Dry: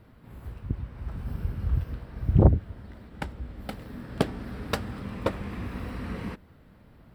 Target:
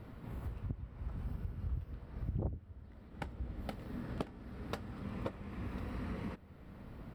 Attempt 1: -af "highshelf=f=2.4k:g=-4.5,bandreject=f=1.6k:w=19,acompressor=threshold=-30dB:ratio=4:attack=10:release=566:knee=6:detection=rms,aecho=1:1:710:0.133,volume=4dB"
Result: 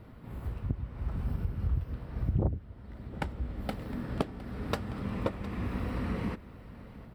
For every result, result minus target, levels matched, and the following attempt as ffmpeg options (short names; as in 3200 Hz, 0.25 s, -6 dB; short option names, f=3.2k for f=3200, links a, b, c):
compressor: peak gain reduction -8.5 dB; echo 0.338 s early
-af "highshelf=f=2.4k:g=-4.5,bandreject=f=1.6k:w=19,acompressor=threshold=-41.5dB:ratio=4:attack=10:release=566:knee=6:detection=rms,aecho=1:1:710:0.133,volume=4dB"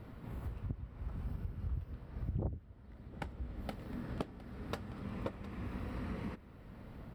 echo 0.338 s early
-af "highshelf=f=2.4k:g=-4.5,bandreject=f=1.6k:w=19,acompressor=threshold=-41.5dB:ratio=4:attack=10:release=566:knee=6:detection=rms,aecho=1:1:1048:0.133,volume=4dB"